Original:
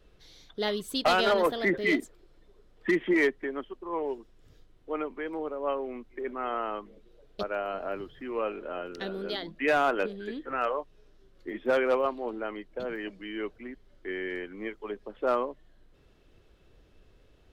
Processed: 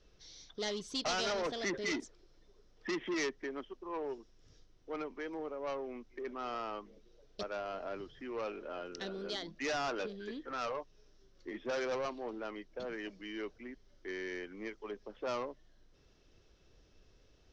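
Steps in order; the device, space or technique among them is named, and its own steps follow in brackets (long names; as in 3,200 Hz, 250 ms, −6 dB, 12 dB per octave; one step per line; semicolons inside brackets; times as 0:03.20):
overdriven synthesiser ladder filter (soft clipping −26.5 dBFS, distortion −9 dB; transistor ladder low-pass 6,200 Hz, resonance 70%)
level +6 dB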